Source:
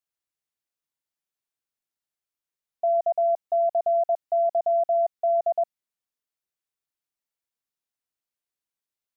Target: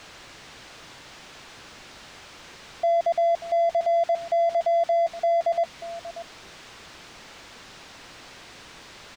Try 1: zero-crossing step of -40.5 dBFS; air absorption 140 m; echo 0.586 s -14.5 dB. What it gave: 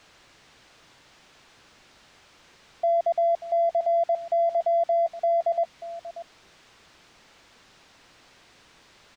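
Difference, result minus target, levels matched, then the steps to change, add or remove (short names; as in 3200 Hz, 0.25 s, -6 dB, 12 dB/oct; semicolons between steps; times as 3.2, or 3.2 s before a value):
zero-crossing step: distortion -10 dB
change: zero-crossing step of -30 dBFS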